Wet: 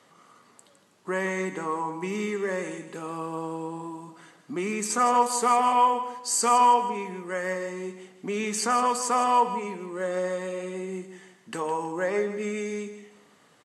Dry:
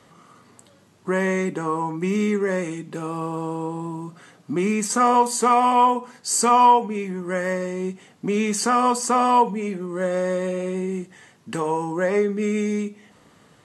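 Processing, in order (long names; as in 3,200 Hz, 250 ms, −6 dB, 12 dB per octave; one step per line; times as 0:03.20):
high-pass filter 380 Hz 6 dB per octave
on a send: repeating echo 160 ms, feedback 32%, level −11 dB
on the sum: level −3.5 dB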